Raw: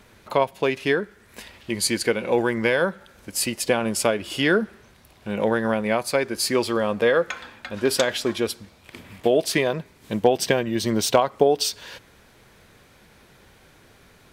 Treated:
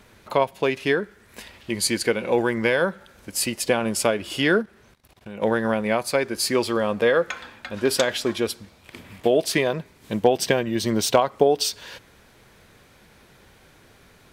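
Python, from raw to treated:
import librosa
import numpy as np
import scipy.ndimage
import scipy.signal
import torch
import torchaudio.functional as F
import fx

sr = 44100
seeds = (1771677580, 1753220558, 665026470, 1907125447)

y = fx.level_steps(x, sr, step_db=18, at=(4.61, 5.41), fade=0.02)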